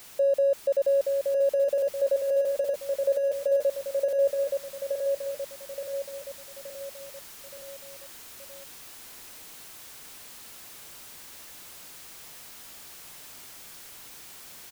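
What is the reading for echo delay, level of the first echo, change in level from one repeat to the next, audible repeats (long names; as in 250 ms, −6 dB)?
873 ms, −4.0 dB, −6.0 dB, 5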